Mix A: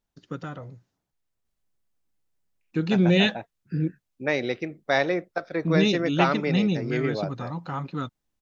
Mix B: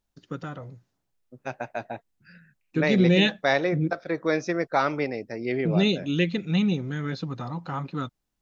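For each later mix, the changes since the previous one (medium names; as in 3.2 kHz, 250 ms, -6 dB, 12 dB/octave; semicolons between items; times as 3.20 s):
second voice: entry -1.45 s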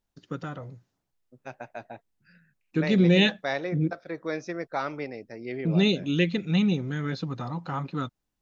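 second voice -7.0 dB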